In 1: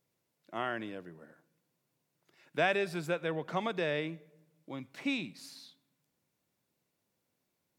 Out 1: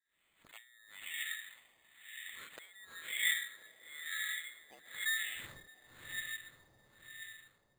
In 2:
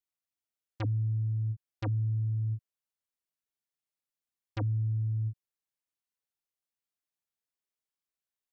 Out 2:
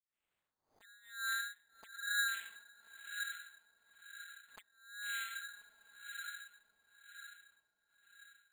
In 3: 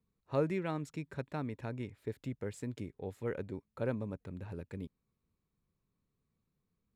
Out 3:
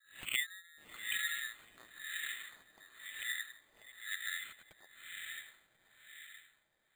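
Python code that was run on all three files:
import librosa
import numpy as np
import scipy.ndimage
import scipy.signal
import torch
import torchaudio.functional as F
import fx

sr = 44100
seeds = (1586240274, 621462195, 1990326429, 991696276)

p1 = scipy.signal.sosfilt(scipy.signal.butter(2, 240.0, 'highpass', fs=sr, output='sos'), x)
p2 = fx.env_lowpass_down(p1, sr, base_hz=360.0, full_db=-34.5)
p3 = fx.auto_swell(p2, sr, attack_ms=104.0)
p4 = fx.harmonic_tremolo(p3, sr, hz=1.4, depth_pct=100, crossover_hz=440.0)
p5 = fx.freq_invert(p4, sr, carrier_hz=4000)
p6 = fx.wow_flutter(p5, sr, seeds[0], rate_hz=2.1, depth_cents=16.0)
p7 = p6 + fx.echo_diffused(p6, sr, ms=597, feedback_pct=55, wet_db=-3, dry=0)
p8 = fx.filter_lfo_lowpass(p7, sr, shape='sine', hz=1.0, low_hz=780.0, high_hz=3100.0, q=1.4)
p9 = np.repeat(p8[::8], 8)[:len(p8)]
p10 = fx.pre_swell(p9, sr, db_per_s=120.0)
y = p10 * 10.0 ** (11.5 / 20.0)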